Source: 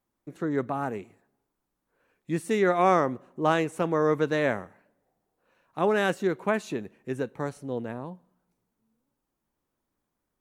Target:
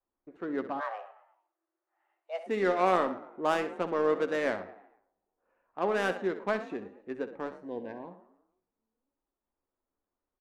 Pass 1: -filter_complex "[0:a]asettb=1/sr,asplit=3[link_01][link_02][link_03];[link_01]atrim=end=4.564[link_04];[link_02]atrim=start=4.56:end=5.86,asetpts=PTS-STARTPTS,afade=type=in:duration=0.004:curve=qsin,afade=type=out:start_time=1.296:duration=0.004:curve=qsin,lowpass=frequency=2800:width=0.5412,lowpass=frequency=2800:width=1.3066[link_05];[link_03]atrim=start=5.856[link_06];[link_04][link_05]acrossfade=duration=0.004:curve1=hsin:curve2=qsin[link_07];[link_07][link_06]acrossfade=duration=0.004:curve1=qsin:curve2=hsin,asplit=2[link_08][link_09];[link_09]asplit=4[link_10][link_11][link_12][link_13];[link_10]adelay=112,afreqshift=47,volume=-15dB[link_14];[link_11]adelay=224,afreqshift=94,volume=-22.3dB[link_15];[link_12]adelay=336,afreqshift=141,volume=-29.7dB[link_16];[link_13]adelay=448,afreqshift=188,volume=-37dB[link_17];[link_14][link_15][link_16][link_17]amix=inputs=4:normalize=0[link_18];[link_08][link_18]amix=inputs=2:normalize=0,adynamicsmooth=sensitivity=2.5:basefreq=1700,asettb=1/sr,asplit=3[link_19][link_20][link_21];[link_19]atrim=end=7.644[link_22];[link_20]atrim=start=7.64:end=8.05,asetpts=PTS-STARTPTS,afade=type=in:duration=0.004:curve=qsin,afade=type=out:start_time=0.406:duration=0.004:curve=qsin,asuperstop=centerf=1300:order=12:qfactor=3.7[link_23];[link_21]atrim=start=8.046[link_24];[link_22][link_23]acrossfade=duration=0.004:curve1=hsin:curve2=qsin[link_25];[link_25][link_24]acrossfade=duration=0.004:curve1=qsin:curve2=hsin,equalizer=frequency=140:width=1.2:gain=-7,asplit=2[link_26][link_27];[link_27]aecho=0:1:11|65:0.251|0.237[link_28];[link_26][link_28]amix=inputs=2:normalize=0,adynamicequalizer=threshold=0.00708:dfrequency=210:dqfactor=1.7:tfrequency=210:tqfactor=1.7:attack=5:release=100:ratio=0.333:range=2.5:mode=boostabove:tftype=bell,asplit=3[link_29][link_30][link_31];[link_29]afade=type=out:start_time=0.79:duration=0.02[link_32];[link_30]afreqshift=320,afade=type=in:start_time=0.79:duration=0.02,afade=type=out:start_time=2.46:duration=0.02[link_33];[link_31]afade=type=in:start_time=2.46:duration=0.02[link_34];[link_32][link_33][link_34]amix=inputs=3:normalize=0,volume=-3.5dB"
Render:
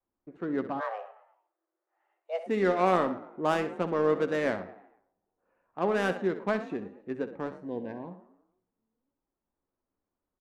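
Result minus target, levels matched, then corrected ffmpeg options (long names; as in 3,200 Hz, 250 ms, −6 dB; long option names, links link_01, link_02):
125 Hz band +6.0 dB
-filter_complex "[0:a]asettb=1/sr,asplit=3[link_01][link_02][link_03];[link_01]atrim=end=4.564[link_04];[link_02]atrim=start=4.56:end=5.86,asetpts=PTS-STARTPTS,afade=type=in:duration=0.004:curve=qsin,afade=type=out:start_time=1.296:duration=0.004:curve=qsin,lowpass=frequency=2800:width=0.5412,lowpass=frequency=2800:width=1.3066[link_05];[link_03]atrim=start=5.856[link_06];[link_04][link_05]acrossfade=duration=0.004:curve1=hsin:curve2=qsin[link_07];[link_07][link_06]acrossfade=duration=0.004:curve1=qsin:curve2=hsin,asplit=2[link_08][link_09];[link_09]asplit=4[link_10][link_11][link_12][link_13];[link_10]adelay=112,afreqshift=47,volume=-15dB[link_14];[link_11]adelay=224,afreqshift=94,volume=-22.3dB[link_15];[link_12]adelay=336,afreqshift=141,volume=-29.7dB[link_16];[link_13]adelay=448,afreqshift=188,volume=-37dB[link_17];[link_14][link_15][link_16][link_17]amix=inputs=4:normalize=0[link_18];[link_08][link_18]amix=inputs=2:normalize=0,adynamicsmooth=sensitivity=2.5:basefreq=1700,asettb=1/sr,asplit=3[link_19][link_20][link_21];[link_19]atrim=end=7.644[link_22];[link_20]atrim=start=7.64:end=8.05,asetpts=PTS-STARTPTS,afade=type=in:duration=0.004:curve=qsin,afade=type=out:start_time=0.406:duration=0.004:curve=qsin,asuperstop=centerf=1300:order=12:qfactor=3.7[link_23];[link_21]atrim=start=8.046[link_24];[link_22][link_23]acrossfade=duration=0.004:curve1=hsin:curve2=qsin[link_25];[link_25][link_24]acrossfade=duration=0.004:curve1=qsin:curve2=hsin,equalizer=frequency=140:width=1.2:gain=-17.5,asplit=2[link_26][link_27];[link_27]aecho=0:1:11|65:0.251|0.237[link_28];[link_26][link_28]amix=inputs=2:normalize=0,adynamicequalizer=threshold=0.00708:dfrequency=210:dqfactor=1.7:tfrequency=210:tqfactor=1.7:attack=5:release=100:ratio=0.333:range=2.5:mode=boostabove:tftype=bell,asplit=3[link_29][link_30][link_31];[link_29]afade=type=out:start_time=0.79:duration=0.02[link_32];[link_30]afreqshift=320,afade=type=in:start_time=0.79:duration=0.02,afade=type=out:start_time=2.46:duration=0.02[link_33];[link_31]afade=type=in:start_time=2.46:duration=0.02[link_34];[link_32][link_33][link_34]amix=inputs=3:normalize=0,volume=-3.5dB"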